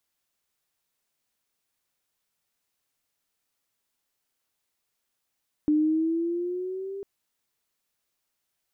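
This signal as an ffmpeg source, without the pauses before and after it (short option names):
-f lavfi -i "aevalsrc='pow(10,(-18-15*t/1.35)/20)*sin(2*PI*299*1.35/(5*log(2)/12)*(exp(5*log(2)/12*t/1.35)-1))':d=1.35:s=44100"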